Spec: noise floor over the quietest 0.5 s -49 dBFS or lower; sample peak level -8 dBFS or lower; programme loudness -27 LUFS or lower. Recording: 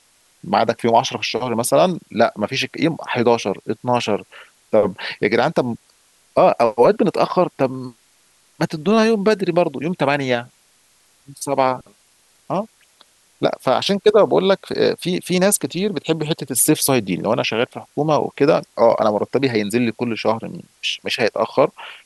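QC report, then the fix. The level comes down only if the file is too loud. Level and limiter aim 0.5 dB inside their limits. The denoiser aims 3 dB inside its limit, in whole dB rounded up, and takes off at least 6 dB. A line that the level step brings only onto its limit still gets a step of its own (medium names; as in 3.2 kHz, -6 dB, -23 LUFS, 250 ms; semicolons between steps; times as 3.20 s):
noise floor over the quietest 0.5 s -57 dBFS: pass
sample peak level -2.5 dBFS: fail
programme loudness -18.5 LUFS: fail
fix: trim -9 dB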